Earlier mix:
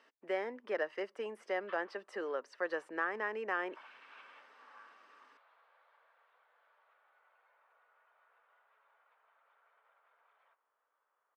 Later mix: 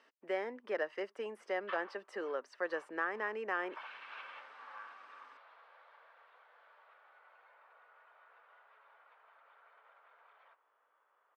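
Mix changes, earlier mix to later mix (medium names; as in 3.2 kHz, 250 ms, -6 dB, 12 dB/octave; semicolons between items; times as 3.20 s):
background +8.0 dB; reverb: off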